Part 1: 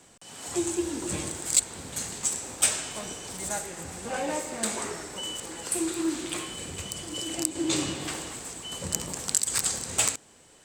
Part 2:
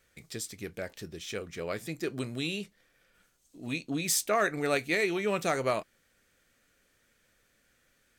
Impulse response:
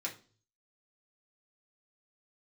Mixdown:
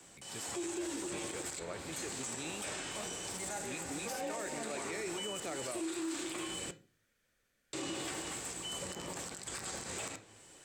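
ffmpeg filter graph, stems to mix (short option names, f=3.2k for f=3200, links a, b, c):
-filter_complex "[0:a]volume=-5dB,asplit=3[a][b][c];[a]atrim=end=6.71,asetpts=PTS-STARTPTS,afade=t=out:st=6.706:d=0.004:c=hsin[d];[b]atrim=start=6.71:end=7.73,asetpts=PTS-STARTPTS,volume=0[e];[c]atrim=start=7.73,asetpts=PTS-STARTPTS,afade=t=in:d=0.004:c=hsin[f];[d][e][f]concat=n=3:v=0:a=1,asplit=2[g][h];[h]volume=-4dB[i];[1:a]acontrast=39,volume=-14dB[j];[2:a]atrim=start_sample=2205[k];[i][k]afir=irnorm=-1:irlink=0[l];[g][j][l]amix=inputs=3:normalize=0,acrossover=split=260|680|2100|4900[m][n][o][p][q];[m]acompressor=threshold=-50dB:ratio=4[r];[n]acompressor=threshold=-33dB:ratio=4[s];[o]acompressor=threshold=-43dB:ratio=4[t];[p]acompressor=threshold=-45dB:ratio=4[u];[q]acompressor=threshold=-42dB:ratio=4[v];[r][s][t][u][v]amix=inputs=5:normalize=0,alimiter=level_in=6.5dB:limit=-24dB:level=0:latency=1:release=26,volume=-6.5dB"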